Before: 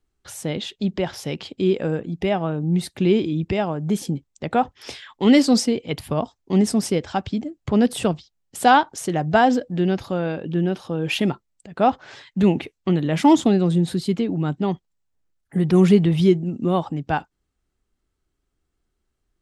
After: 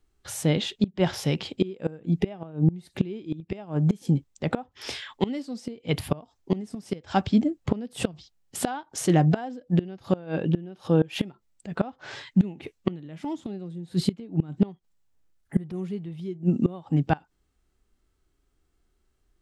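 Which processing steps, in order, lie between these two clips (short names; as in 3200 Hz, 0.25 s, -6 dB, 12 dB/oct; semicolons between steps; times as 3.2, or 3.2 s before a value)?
harmonic-percussive split harmonic +7 dB; flipped gate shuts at -9 dBFS, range -24 dB; gain -1 dB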